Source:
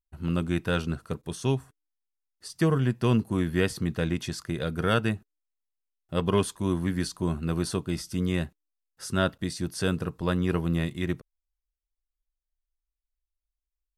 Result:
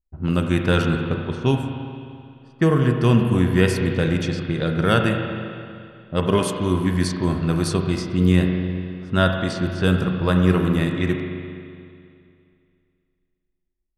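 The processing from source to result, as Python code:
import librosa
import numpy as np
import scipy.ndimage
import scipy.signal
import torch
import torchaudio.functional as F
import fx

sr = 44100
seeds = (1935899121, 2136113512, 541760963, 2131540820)

p1 = fx.env_lowpass(x, sr, base_hz=560.0, full_db=-23.0)
p2 = fx.rider(p1, sr, range_db=10, speed_s=2.0)
p3 = p1 + (p2 * 10.0 ** (2.5 / 20.0))
p4 = fx.rev_spring(p3, sr, rt60_s=2.4, pass_ms=(33, 43), chirp_ms=45, drr_db=3.0)
y = p4 * 10.0 ** (-1.5 / 20.0)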